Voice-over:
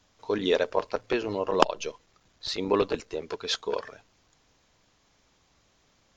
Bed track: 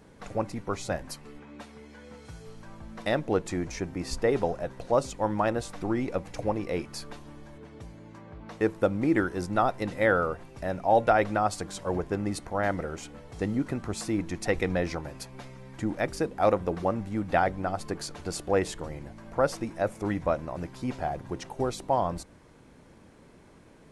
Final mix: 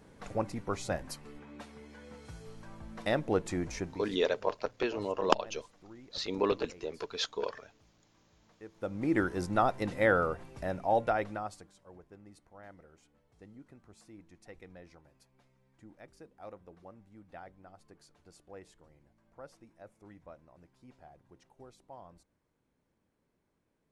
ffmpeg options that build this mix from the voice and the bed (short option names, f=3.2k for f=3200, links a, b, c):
-filter_complex "[0:a]adelay=3700,volume=-5dB[a];[1:a]volume=18dB,afade=t=out:st=3.78:d=0.32:silence=0.0944061,afade=t=in:st=8.72:d=0.53:silence=0.0891251,afade=t=out:st=10.51:d=1.22:silence=0.0794328[b];[a][b]amix=inputs=2:normalize=0"